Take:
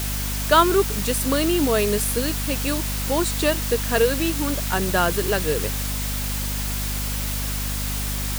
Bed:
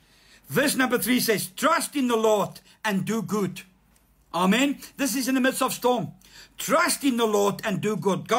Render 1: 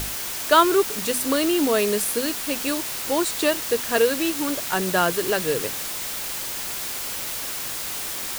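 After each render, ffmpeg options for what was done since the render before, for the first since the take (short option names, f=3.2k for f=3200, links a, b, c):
-af "bandreject=f=50:t=h:w=6,bandreject=f=100:t=h:w=6,bandreject=f=150:t=h:w=6,bandreject=f=200:t=h:w=6,bandreject=f=250:t=h:w=6"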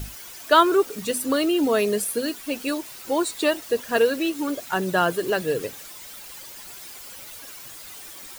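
-af "afftdn=nr=13:nf=-30"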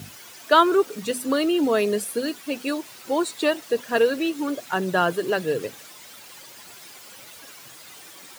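-af "highpass=f=100:w=0.5412,highpass=f=100:w=1.3066,highshelf=f=8.4k:g=-7.5"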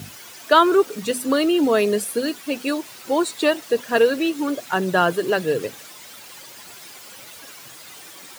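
-af "volume=3dB,alimiter=limit=-3dB:level=0:latency=1"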